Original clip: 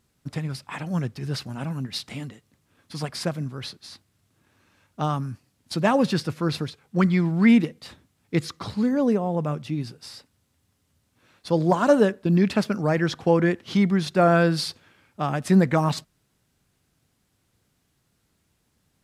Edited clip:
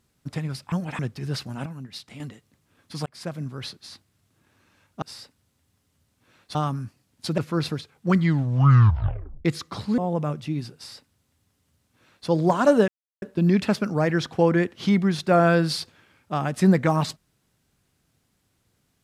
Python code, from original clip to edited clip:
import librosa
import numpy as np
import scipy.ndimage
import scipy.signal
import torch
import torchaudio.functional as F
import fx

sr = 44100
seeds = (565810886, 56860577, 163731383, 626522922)

y = fx.edit(x, sr, fx.reverse_span(start_s=0.72, length_s=0.27),
    fx.clip_gain(start_s=1.66, length_s=0.54, db=-7.5),
    fx.fade_in_span(start_s=3.06, length_s=0.62, curve='qsin'),
    fx.cut(start_s=5.85, length_s=0.42),
    fx.tape_stop(start_s=7.06, length_s=1.28),
    fx.cut(start_s=8.87, length_s=0.33),
    fx.duplicate(start_s=9.97, length_s=1.53, to_s=5.02),
    fx.insert_silence(at_s=12.1, length_s=0.34), tone=tone)